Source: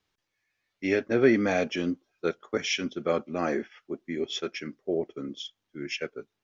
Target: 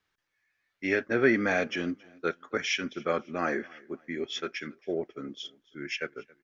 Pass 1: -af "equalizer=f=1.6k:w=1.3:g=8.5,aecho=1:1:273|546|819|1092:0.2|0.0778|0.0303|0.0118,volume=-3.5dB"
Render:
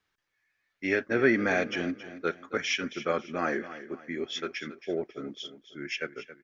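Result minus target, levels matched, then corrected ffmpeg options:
echo-to-direct +10.5 dB
-af "equalizer=f=1.6k:w=1.3:g=8.5,aecho=1:1:273|546:0.0596|0.0232,volume=-3.5dB"

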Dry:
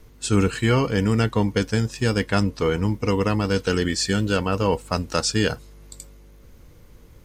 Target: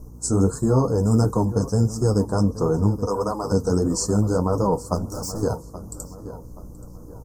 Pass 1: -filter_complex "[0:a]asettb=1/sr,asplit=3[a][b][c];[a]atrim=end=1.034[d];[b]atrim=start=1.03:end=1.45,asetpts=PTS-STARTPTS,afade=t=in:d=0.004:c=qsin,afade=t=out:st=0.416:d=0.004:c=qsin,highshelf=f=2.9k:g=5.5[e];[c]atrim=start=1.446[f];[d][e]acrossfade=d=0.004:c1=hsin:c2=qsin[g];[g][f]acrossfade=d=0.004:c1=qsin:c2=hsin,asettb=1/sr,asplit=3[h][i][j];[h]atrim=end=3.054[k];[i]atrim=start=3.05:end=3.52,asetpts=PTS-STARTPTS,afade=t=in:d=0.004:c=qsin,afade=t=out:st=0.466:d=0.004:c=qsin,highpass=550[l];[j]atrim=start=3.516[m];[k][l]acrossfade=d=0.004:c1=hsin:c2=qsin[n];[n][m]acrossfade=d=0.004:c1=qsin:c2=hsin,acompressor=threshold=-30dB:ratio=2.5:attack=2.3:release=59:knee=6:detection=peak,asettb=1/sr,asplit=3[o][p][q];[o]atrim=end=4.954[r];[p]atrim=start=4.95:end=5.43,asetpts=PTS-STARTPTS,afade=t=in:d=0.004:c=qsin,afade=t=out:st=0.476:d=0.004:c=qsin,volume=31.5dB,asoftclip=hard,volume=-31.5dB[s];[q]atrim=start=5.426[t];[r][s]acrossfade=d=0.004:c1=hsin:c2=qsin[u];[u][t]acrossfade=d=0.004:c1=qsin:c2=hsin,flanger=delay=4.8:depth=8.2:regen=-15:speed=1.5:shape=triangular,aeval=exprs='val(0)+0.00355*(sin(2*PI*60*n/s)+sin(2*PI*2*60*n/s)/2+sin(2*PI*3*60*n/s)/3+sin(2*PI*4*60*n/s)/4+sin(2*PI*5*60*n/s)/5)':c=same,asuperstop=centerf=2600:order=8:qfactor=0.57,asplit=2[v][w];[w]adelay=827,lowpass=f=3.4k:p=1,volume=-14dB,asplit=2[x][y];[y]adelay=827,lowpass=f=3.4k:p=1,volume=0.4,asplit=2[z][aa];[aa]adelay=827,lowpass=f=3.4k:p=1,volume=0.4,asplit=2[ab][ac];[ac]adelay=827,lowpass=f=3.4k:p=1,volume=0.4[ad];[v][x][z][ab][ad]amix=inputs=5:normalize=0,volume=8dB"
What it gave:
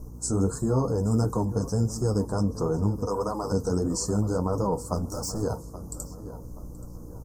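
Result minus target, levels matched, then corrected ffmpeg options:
compressor: peak gain reduction +5.5 dB
-filter_complex "[0:a]asettb=1/sr,asplit=3[a][b][c];[a]atrim=end=1.034[d];[b]atrim=start=1.03:end=1.45,asetpts=PTS-STARTPTS,afade=t=in:d=0.004:c=qsin,afade=t=out:st=0.416:d=0.004:c=qsin,highshelf=f=2.9k:g=5.5[e];[c]atrim=start=1.446[f];[d][e]acrossfade=d=0.004:c1=hsin:c2=qsin[g];[g][f]acrossfade=d=0.004:c1=qsin:c2=hsin,asettb=1/sr,asplit=3[h][i][j];[h]atrim=end=3.054[k];[i]atrim=start=3.05:end=3.52,asetpts=PTS-STARTPTS,afade=t=in:d=0.004:c=qsin,afade=t=out:st=0.466:d=0.004:c=qsin,highpass=550[l];[j]atrim=start=3.516[m];[k][l]acrossfade=d=0.004:c1=hsin:c2=qsin[n];[n][m]acrossfade=d=0.004:c1=qsin:c2=hsin,acompressor=threshold=-20.5dB:ratio=2.5:attack=2.3:release=59:knee=6:detection=peak,asettb=1/sr,asplit=3[o][p][q];[o]atrim=end=4.954[r];[p]atrim=start=4.95:end=5.43,asetpts=PTS-STARTPTS,afade=t=in:d=0.004:c=qsin,afade=t=out:st=0.476:d=0.004:c=qsin,volume=31.5dB,asoftclip=hard,volume=-31.5dB[s];[q]atrim=start=5.426[t];[r][s]acrossfade=d=0.004:c1=hsin:c2=qsin[u];[u][t]acrossfade=d=0.004:c1=qsin:c2=hsin,flanger=delay=4.8:depth=8.2:regen=-15:speed=1.5:shape=triangular,aeval=exprs='val(0)+0.00355*(sin(2*PI*60*n/s)+sin(2*PI*2*60*n/s)/2+sin(2*PI*3*60*n/s)/3+sin(2*PI*4*60*n/s)/4+sin(2*PI*5*60*n/s)/5)':c=same,asuperstop=centerf=2600:order=8:qfactor=0.57,asplit=2[v][w];[w]adelay=827,lowpass=f=3.4k:p=1,volume=-14dB,asplit=2[x][y];[y]adelay=827,lowpass=f=3.4k:p=1,volume=0.4,asplit=2[z][aa];[aa]adelay=827,lowpass=f=3.4k:p=1,volume=0.4,asplit=2[ab][ac];[ac]adelay=827,lowpass=f=3.4k:p=1,volume=0.4[ad];[v][x][z][ab][ad]amix=inputs=5:normalize=0,volume=8dB"

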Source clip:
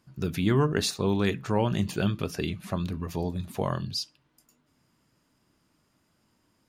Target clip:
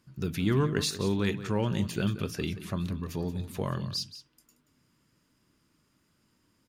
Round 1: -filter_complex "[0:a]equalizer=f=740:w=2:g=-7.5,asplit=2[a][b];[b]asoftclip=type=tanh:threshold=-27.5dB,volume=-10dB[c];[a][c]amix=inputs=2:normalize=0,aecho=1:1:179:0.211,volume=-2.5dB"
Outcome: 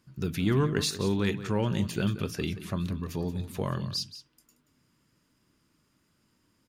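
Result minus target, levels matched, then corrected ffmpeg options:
soft clip: distortion -5 dB
-filter_complex "[0:a]equalizer=f=740:w=2:g=-7.5,asplit=2[a][b];[b]asoftclip=type=tanh:threshold=-37.5dB,volume=-10dB[c];[a][c]amix=inputs=2:normalize=0,aecho=1:1:179:0.211,volume=-2.5dB"

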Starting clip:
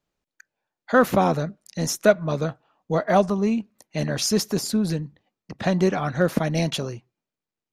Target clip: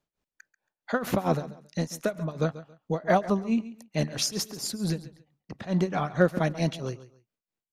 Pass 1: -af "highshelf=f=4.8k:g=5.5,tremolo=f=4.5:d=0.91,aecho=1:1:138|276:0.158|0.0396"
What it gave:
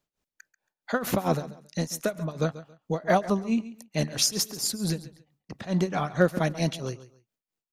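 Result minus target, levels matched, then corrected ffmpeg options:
8000 Hz band +4.5 dB
-af "highshelf=f=4.8k:g=-2,tremolo=f=4.5:d=0.91,aecho=1:1:138|276:0.158|0.0396"

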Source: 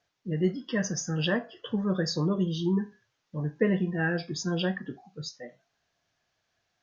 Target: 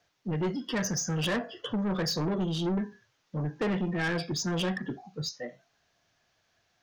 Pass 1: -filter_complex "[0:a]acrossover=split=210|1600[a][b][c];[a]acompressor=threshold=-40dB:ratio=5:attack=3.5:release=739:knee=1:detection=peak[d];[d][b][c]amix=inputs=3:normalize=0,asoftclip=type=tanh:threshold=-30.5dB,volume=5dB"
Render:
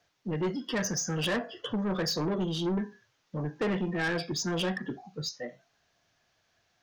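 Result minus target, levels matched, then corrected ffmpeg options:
compressor: peak gain reduction +5.5 dB
-filter_complex "[0:a]acrossover=split=210|1600[a][b][c];[a]acompressor=threshold=-33dB:ratio=5:attack=3.5:release=739:knee=1:detection=peak[d];[d][b][c]amix=inputs=3:normalize=0,asoftclip=type=tanh:threshold=-30.5dB,volume=5dB"

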